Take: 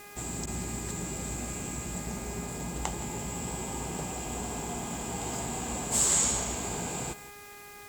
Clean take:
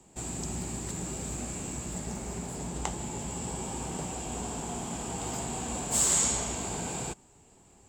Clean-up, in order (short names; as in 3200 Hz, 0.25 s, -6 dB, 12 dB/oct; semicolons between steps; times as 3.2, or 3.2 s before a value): de-hum 409.8 Hz, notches 6; interpolate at 0.46, 10 ms; noise print and reduce 11 dB; inverse comb 0.169 s -16.5 dB